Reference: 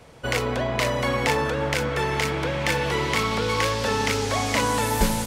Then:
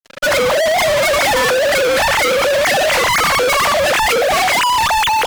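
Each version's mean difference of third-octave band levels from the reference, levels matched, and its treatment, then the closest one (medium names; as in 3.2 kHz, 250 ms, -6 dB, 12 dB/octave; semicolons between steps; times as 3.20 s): 8.5 dB: formants replaced by sine waves; fuzz box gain 45 dB, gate -45 dBFS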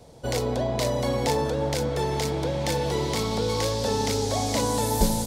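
3.0 dB: high-order bell 1.8 kHz -11.5 dB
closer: second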